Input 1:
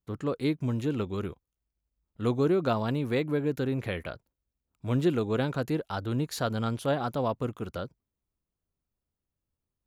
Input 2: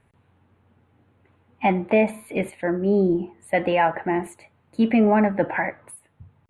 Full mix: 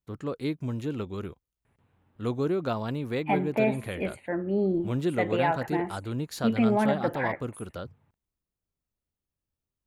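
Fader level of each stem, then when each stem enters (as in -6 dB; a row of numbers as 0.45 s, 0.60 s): -2.5 dB, -6.5 dB; 0.00 s, 1.65 s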